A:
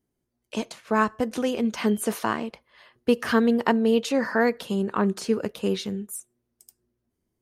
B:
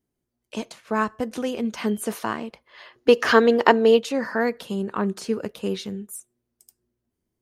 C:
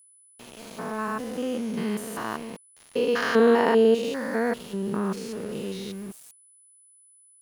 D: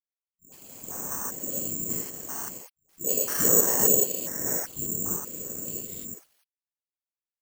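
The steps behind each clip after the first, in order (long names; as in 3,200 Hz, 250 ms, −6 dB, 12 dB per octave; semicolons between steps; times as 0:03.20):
gain on a spectral selection 0:02.66–0:03.97, 260–7,400 Hz +9 dB; level −1.5 dB
spectrum averaged block by block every 200 ms; centre clipping without the shift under −41.5 dBFS; steady tone 10,000 Hz −54 dBFS
all-pass dispersion highs, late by 131 ms, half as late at 320 Hz; random phases in short frames; bad sample-rate conversion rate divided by 6×, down filtered, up zero stuff; level −10.5 dB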